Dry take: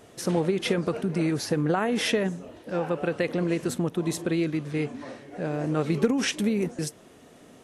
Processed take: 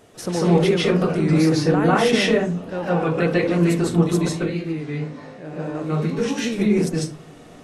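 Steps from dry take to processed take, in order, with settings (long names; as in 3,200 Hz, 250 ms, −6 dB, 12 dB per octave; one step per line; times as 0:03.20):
0:04.29–0:06.45: tuned comb filter 52 Hz, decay 0.43 s, harmonics all, mix 80%
convolution reverb RT60 0.30 s, pre-delay 141 ms, DRR −7 dB
wow of a warped record 33 1/3 rpm, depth 100 cents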